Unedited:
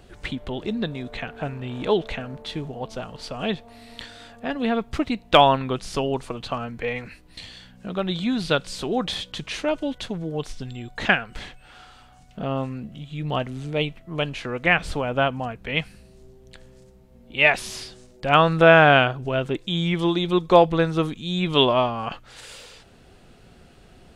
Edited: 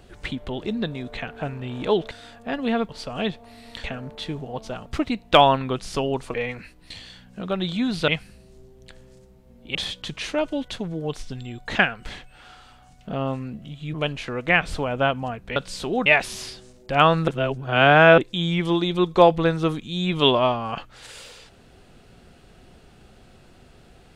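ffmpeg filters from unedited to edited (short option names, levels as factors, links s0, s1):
-filter_complex "[0:a]asplit=13[s0][s1][s2][s3][s4][s5][s6][s7][s8][s9][s10][s11][s12];[s0]atrim=end=2.112[s13];[s1]atrim=start=4.078:end=4.862[s14];[s2]atrim=start=3.128:end=4.082[s15];[s3]atrim=start=2.108:end=3.132[s16];[s4]atrim=start=4.858:end=6.342[s17];[s5]atrim=start=6.808:end=8.552[s18];[s6]atrim=start=15.728:end=17.402[s19];[s7]atrim=start=9.048:end=13.242[s20];[s8]atrim=start=14.108:end=15.732[s21];[s9]atrim=start=8.548:end=9.052[s22];[s10]atrim=start=17.398:end=18.622[s23];[s11]atrim=start=18.618:end=19.522,asetpts=PTS-STARTPTS,areverse[s24];[s12]atrim=start=19.518[s25];[s13][s14]acrossfade=d=0.004:c1=hsin:c2=hsin[s26];[s26][s15]acrossfade=d=0.004:c1=hsin:c2=hsin[s27];[s27][s16]acrossfade=d=0.004:c1=hsin:c2=hsin[s28];[s28][s17]acrossfade=d=0.004:c1=hsin:c2=hsin[s29];[s29][s18]acrossfade=d=0.004:c1=hsin:c2=hsin[s30];[s30][s19]acrossfade=d=0.004:c1=hsin:c2=hsin[s31];[s31][s20]acrossfade=d=0.004:c1=hsin:c2=hsin[s32];[s32][s21]acrossfade=d=0.004:c1=hsin:c2=hsin[s33];[s33][s22]acrossfade=d=0.004:c1=hsin:c2=hsin[s34];[s34][s23]acrossfade=d=0.004:c1=hsin:c2=hsin[s35];[s35][s24]acrossfade=d=0.004:c1=hsin:c2=hsin[s36];[s36][s25]acrossfade=d=0.004:c1=hsin:c2=hsin"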